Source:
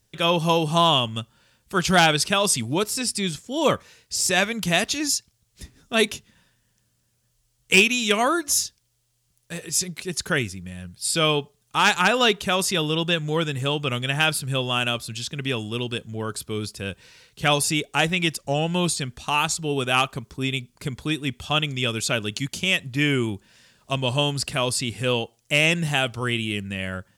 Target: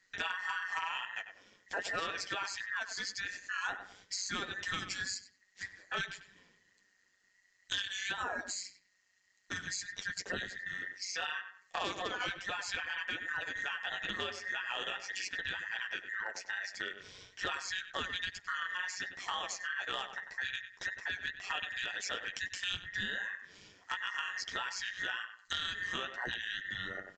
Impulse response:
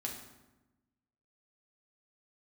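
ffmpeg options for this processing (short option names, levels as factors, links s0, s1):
-filter_complex "[0:a]afftfilt=real='real(if(between(b,1,1012),(2*floor((b-1)/92)+1)*92-b,b),0)':imag='imag(if(between(b,1,1012),(2*floor((b-1)/92)+1)*92-b,b),0)*if(between(b,1,1012),-1,1)':win_size=2048:overlap=0.75,flanger=delay=8.9:depth=4:regen=-14:speed=1.9:shape=triangular,asplit=2[s0][s1];[s1]adelay=96,lowpass=f=1800:p=1,volume=0.266,asplit=2[s2][s3];[s3]adelay=96,lowpass=f=1800:p=1,volume=0.21,asplit=2[s4][s5];[s5]adelay=96,lowpass=f=1800:p=1,volume=0.21[s6];[s2][s4][s6]amix=inputs=3:normalize=0[s7];[s0][s7]amix=inputs=2:normalize=0,acompressor=threshold=0.0141:ratio=5,aresample=16000,volume=25.1,asoftclip=hard,volume=0.0398,aresample=44100,tremolo=f=190:d=0.621,volume=1.5"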